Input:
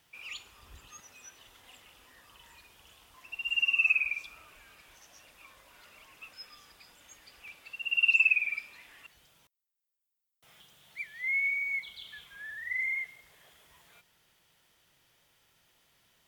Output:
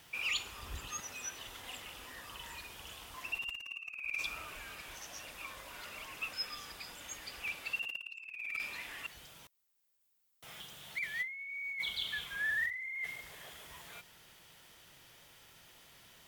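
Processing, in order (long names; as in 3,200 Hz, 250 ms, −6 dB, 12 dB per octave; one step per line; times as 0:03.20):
compressor whose output falls as the input rises −41 dBFS, ratio −1
level +1 dB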